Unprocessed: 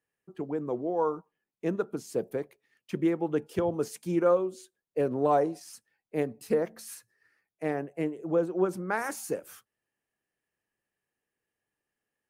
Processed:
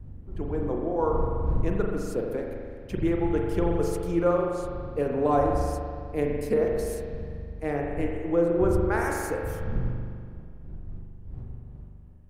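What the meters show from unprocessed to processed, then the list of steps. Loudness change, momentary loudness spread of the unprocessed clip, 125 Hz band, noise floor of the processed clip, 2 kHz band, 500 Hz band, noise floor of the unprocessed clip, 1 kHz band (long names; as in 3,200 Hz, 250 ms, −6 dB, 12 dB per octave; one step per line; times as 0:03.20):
+2.5 dB, 14 LU, +10.0 dB, −43 dBFS, +3.5 dB, +3.0 dB, below −85 dBFS, +3.0 dB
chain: wind on the microphone 85 Hz −35 dBFS
spring reverb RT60 2.1 s, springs 41 ms, chirp 75 ms, DRR 0 dB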